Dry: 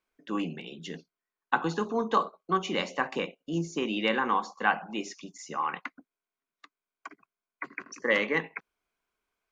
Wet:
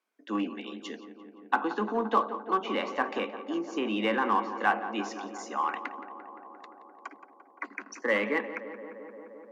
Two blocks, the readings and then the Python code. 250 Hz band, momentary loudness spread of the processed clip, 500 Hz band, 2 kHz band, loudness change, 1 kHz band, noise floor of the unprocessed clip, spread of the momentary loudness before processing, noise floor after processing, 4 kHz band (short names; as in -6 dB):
+0.5 dB, 20 LU, +0.5 dB, -1.5 dB, -0.5 dB, +1.0 dB, under -85 dBFS, 17 LU, -57 dBFS, -3.5 dB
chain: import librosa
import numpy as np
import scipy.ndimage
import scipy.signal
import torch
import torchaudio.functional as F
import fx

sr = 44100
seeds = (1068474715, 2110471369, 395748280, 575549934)

p1 = fx.env_lowpass_down(x, sr, base_hz=2600.0, full_db=-24.5)
p2 = scipy.signal.sosfilt(scipy.signal.cheby1(6, 3, 200.0, 'highpass', fs=sr, output='sos'), p1)
p3 = np.clip(10.0 ** (28.5 / 20.0) * p2, -1.0, 1.0) / 10.0 ** (28.5 / 20.0)
p4 = p2 + (p3 * 10.0 ** (-11.0 / 20.0))
y = fx.echo_tape(p4, sr, ms=173, feedback_pct=90, wet_db=-12, lp_hz=2000.0, drive_db=6.0, wow_cents=12)